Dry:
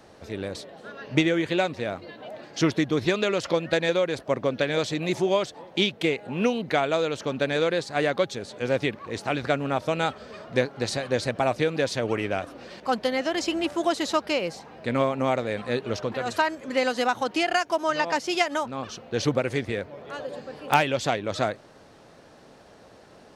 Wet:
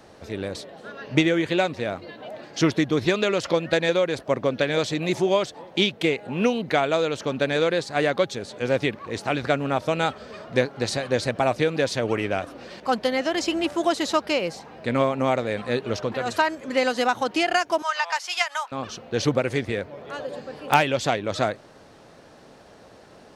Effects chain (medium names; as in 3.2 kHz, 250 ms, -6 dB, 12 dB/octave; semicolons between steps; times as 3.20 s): 17.82–18.72 s: high-pass 850 Hz 24 dB/octave; trim +2 dB